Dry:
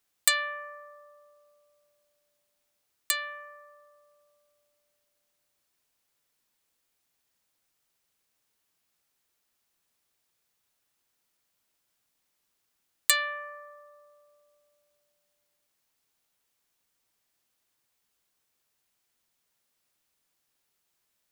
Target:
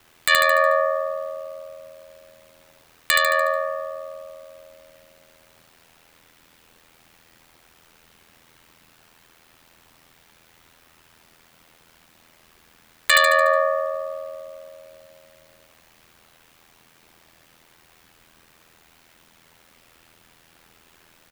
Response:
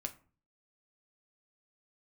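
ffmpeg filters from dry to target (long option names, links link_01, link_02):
-af "aeval=exprs='val(0)*sin(2*PI*41*n/s)':channel_layout=same,acompressor=threshold=-40dB:ratio=3,bass=frequency=250:gain=3,treble=frequency=4000:gain=-11,aecho=1:1:73|146|219|292|365|438:0.447|0.232|0.121|0.0628|0.0327|0.017,alimiter=level_in=31dB:limit=-1dB:release=50:level=0:latency=1,volume=-1dB"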